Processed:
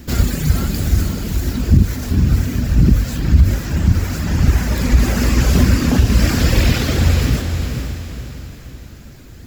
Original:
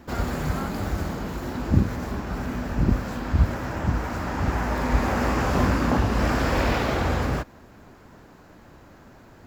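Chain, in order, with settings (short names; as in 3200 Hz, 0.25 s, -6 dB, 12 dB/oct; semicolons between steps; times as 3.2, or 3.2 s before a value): passive tone stack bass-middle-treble 10-0-1; reverb removal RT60 1.7 s; tilt +2 dB/oct; notches 50/100 Hz; on a send: diffused feedback echo 0.472 s, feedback 44%, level -6 dB; on the sum: maximiser +32.5 dB; gain -1 dB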